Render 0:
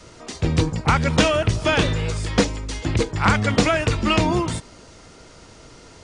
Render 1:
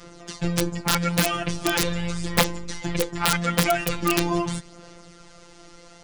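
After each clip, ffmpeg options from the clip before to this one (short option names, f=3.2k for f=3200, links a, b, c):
-af "aphaser=in_gain=1:out_gain=1:delay=4.5:decay=0.39:speed=0.41:type=sinusoidal,afftfilt=real='hypot(re,im)*cos(PI*b)':imag='0':win_size=1024:overlap=0.75,aeval=exprs='(mod(2.24*val(0)+1,2)-1)/2.24':c=same"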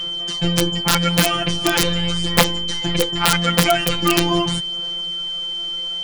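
-af "aeval=exprs='val(0)+0.0398*sin(2*PI*3100*n/s)':c=same,volume=5dB"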